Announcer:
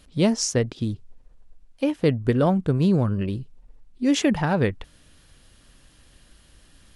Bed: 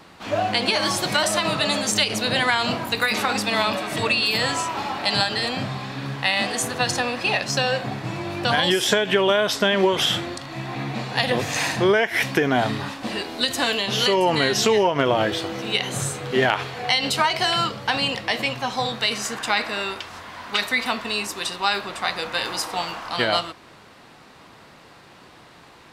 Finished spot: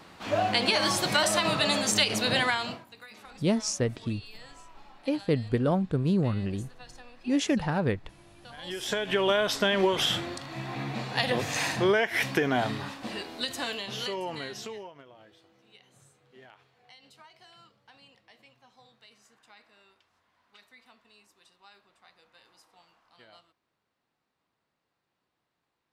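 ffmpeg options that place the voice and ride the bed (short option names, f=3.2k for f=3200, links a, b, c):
-filter_complex "[0:a]adelay=3250,volume=-5.5dB[a];[1:a]volume=18dB,afade=t=out:st=2.35:d=0.5:silence=0.0668344,afade=t=in:st=8.57:d=0.73:silence=0.0841395,afade=t=out:st=12.34:d=2.71:silence=0.0375837[b];[a][b]amix=inputs=2:normalize=0"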